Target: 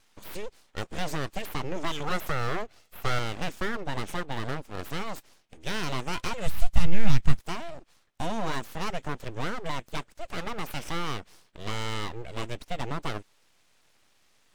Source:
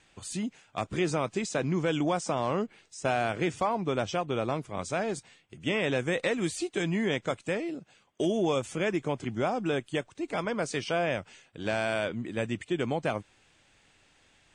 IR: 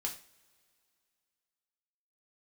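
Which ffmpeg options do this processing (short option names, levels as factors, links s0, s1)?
-filter_complex "[0:a]asettb=1/sr,asplit=3[s0][s1][s2];[s0]atrim=end=1.764[s3];[s1]atrim=start=1.76:end=3.19,asetpts=PTS-STARTPTS,afade=t=in:d=0.004:c=qsin,afade=t=out:st=1.426:d=0.004:c=qsin,aecho=1:1:1.5:0.81,atrim=end_sample=63063[s4];[s2]atrim=start=3.186[s5];[s3][s4]acrossfade=d=0.004:c1=hsin:c2=qsin[s6];[s6][s5]acrossfade=d=0.004:c1=qsin:c2=hsin,aeval=exprs='abs(val(0))':c=same,asplit=3[s7][s8][s9];[s7]afade=t=out:st=6.46:d=0.02[s10];[s8]asubboost=boost=11.5:cutoff=120,afade=t=in:st=6.46:d=0.02,afade=t=out:st=7.38:d=0.02[s11];[s9]afade=t=in:st=7.38:d=0.02[s12];[s10][s11][s12]amix=inputs=3:normalize=0"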